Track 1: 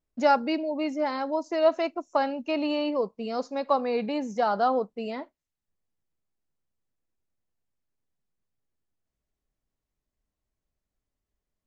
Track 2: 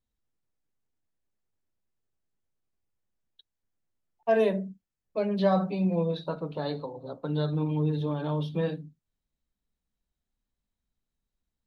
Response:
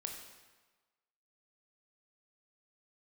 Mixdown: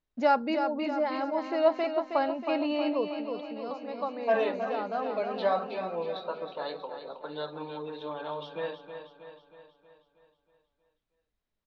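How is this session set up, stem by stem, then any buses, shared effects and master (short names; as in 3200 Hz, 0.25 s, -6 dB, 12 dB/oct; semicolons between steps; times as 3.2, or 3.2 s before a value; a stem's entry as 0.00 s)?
-2.5 dB, 0.00 s, no send, echo send -7 dB, auto duck -15 dB, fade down 0.40 s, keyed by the second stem
+1.0 dB, 0.00 s, no send, echo send -9 dB, HPF 600 Hz 12 dB/oct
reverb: off
echo: feedback echo 0.318 s, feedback 54%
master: LPF 4100 Hz 12 dB/oct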